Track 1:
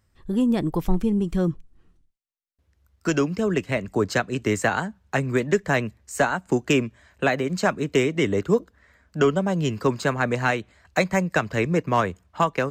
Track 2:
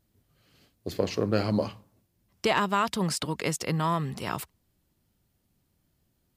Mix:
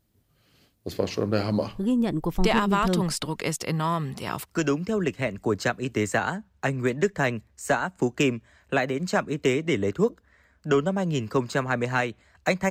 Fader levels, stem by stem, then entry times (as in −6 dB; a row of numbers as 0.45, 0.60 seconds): −2.5, +1.0 decibels; 1.50, 0.00 seconds